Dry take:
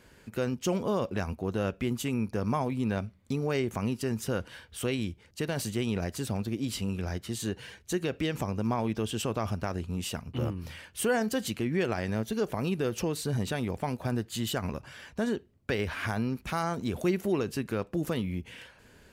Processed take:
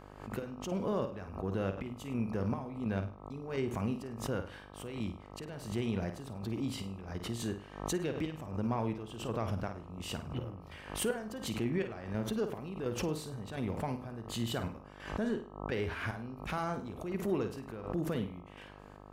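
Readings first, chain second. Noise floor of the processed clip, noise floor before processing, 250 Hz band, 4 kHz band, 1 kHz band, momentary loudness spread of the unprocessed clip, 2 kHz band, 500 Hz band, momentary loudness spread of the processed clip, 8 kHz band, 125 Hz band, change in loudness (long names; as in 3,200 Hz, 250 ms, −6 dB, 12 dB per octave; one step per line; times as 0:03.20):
−52 dBFS, −59 dBFS, −5.5 dB, −6.5 dB, −5.5 dB, 6 LU, −7.0 dB, −5.5 dB, 8 LU, −7.0 dB, −5.5 dB, −5.5 dB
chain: in parallel at −5.5 dB: soft clipping −27.5 dBFS, distortion −12 dB
on the sum: high-shelf EQ 3,800 Hz −8.5 dB
square-wave tremolo 1.4 Hz, depth 65%, duty 55%
on a send: flutter between parallel walls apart 8.8 metres, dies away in 0.36 s
on the sum: hum with harmonics 50 Hz, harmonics 26, −48 dBFS −2 dB per octave
background raised ahead of every attack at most 93 dB per second
level −7 dB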